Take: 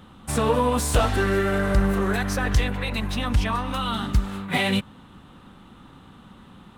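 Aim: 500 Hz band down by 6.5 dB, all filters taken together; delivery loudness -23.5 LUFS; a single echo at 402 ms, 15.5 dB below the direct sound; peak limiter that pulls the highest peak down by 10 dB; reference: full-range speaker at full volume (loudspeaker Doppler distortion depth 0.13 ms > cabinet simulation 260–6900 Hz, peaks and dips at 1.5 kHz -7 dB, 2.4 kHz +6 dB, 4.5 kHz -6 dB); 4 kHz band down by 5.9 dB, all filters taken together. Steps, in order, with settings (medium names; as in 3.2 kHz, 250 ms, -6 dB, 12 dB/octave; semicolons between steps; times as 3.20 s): peaking EQ 500 Hz -7.5 dB; peaking EQ 4 kHz -8 dB; peak limiter -20 dBFS; delay 402 ms -15.5 dB; loudspeaker Doppler distortion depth 0.13 ms; cabinet simulation 260–6900 Hz, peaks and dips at 1.5 kHz -7 dB, 2.4 kHz +6 dB, 4.5 kHz -6 dB; trim +9.5 dB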